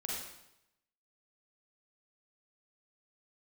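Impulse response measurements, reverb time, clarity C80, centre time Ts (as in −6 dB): 0.85 s, 2.5 dB, 71 ms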